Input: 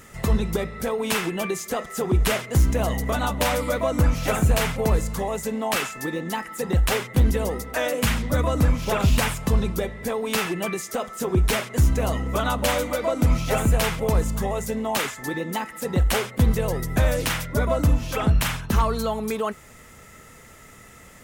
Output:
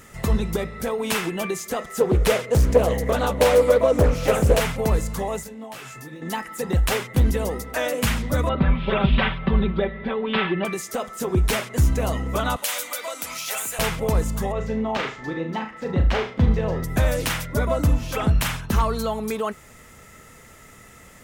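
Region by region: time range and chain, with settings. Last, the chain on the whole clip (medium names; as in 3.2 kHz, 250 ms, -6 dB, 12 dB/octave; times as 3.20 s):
2.00–4.60 s: peaking EQ 490 Hz +13 dB 0.37 oct + loudspeaker Doppler distortion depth 0.44 ms
5.43–6.22 s: peaking EQ 130 Hz +11.5 dB 0.25 oct + compression 16:1, threshold -30 dBFS + detune thickener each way 17 cents
8.49–10.65 s: elliptic low-pass 3.6 kHz, stop band 50 dB + comb 5.2 ms, depth 95%
12.56–13.79 s: high-pass 1.1 kHz 6 dB/octave + tilt EQ +3 dB/octave + compression 2:1, threshold -26 dBFS
14.52–16.84 s: distance through air 200 m + flutter echo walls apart 6.3 m, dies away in 0.31 s
whole clip: none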